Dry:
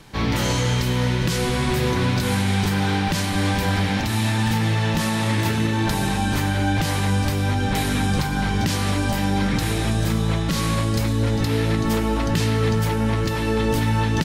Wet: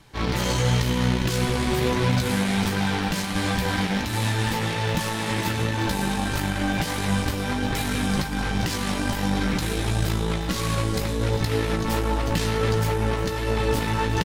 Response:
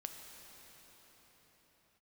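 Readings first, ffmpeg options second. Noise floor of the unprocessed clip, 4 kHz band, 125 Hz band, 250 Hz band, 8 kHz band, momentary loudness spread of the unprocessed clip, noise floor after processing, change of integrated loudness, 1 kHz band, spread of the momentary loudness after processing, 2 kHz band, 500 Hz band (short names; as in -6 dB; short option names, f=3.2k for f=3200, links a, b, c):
-23 dBFS, -2.0 dB, -4.0 dB, -3.5 dB, -2.0 dB, 1 LU, -28 dBFS, -3.0 dB, -2.0 dB, 3 LU, -2.0 dB, -1.0 dB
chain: -filter_complex "[0:a]asplit=2[a][b];[b]acrusher=bits=2:mix=0:aa=0.5,volume=-3dB[c];[a][c]amix=inputs=2:normalize=0,flanger=delay=0.9:depth=4.7:regen=-48:speed=1.4:shape=triangular,asplit=2[d][e];[e]adelay=16,volume=-7.5dB[f];[d][f]amix=inputs=2:normalize=0,aecho=1:1:358:0.168,volume=-3dB"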